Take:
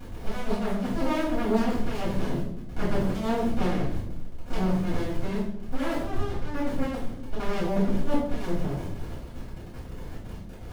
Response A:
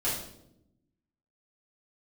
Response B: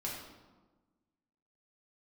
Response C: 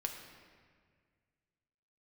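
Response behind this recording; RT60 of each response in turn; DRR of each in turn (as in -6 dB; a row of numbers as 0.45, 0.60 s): A; 0.80, 1.3, 1.8 s; -10.0, -4.5, 2.5 dB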